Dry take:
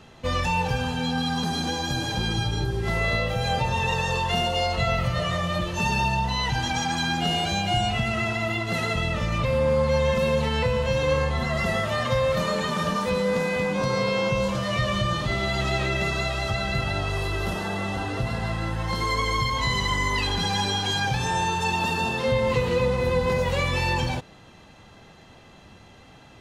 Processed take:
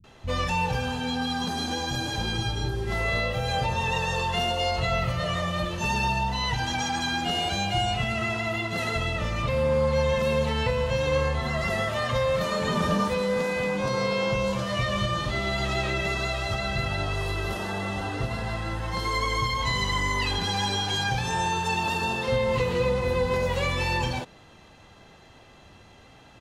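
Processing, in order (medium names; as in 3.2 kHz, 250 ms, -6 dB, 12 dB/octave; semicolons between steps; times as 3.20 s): 12.61–13.04 s: bass shelf 500 Hz +8 dB; bands offset in time lows, highs 40 ms, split 180 Hz; trim -1.5 dB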